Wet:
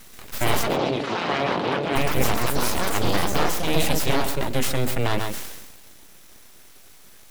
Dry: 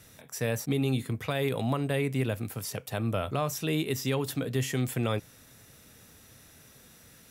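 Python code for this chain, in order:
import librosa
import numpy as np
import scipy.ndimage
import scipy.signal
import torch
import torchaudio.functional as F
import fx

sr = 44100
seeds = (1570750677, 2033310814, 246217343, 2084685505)

p1 = fx.rider(x, sr, range_db=4, speed_s=0.5)
p2 = x + (p1 * 10.0 ** (3.0 / 20.0))
p3 = fx.echo_pitch(p2, sr, ms=132, semitones=4, count=3, db_per_echo=-3.0)
p4 = np.abs(p3)
p5 = fx.bandpass_edges(p4, sr, low_hz=180.0, high_hz=3700.0, at=(0.62, 1.95), fade=0.02)
p6 = p5 + fx.echo_single(p5, sr, ms=133, db=-14.0, dry=0)
y = fx.sustainer(p6, sr, db_per_s=42.0)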